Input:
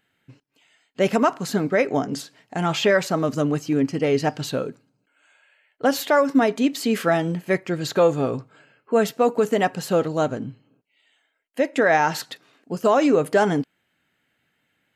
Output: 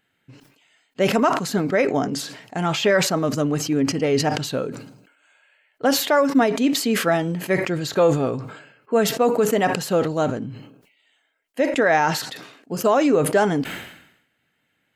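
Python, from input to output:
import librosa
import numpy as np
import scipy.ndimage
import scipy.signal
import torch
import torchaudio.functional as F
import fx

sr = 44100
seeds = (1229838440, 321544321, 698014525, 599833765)

y = fx.sustainer(x, sr, db_per_s=72.0)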